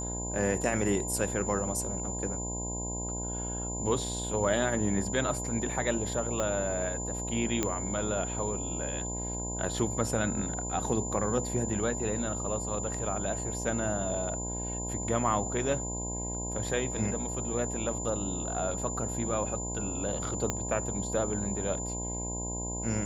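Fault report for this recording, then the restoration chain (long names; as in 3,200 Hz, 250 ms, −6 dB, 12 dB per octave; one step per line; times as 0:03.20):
mains buzz 60 Hz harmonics 17 −37 dBFS
whistle 7,100 Hz −36 dBFS
0:06.40: click −17 dBFS
0:07.63: click −13 dBFS
0:20.50: click −14 dBFS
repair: click removal
hum removal 60 Hz, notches 17
notch filter 7,100 Hz, Q 30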